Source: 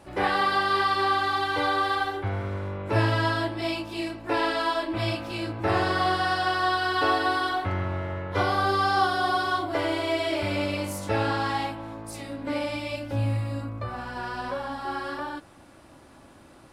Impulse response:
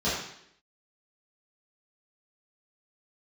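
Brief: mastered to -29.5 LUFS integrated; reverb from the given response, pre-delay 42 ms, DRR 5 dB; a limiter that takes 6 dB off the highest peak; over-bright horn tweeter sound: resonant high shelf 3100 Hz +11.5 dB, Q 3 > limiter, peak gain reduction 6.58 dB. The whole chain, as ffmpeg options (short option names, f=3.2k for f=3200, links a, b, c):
-filter_complex "[0:a]alimiter=limit=-17dB:level=0:latency=1,asplit=2[a][b];[1:a]atrim=start_sample=2205,adelay=42[c];[b][c]afir=irnorm=-1:irlink=0,volume=-17dB[d];[a][d]amix=inputs=2:normalize=0,highshelf=f=3.1k:t=q:w=3:g=11.5,volume=-6dB,alimiter=limit=-20.5dB:level=0:latency=1"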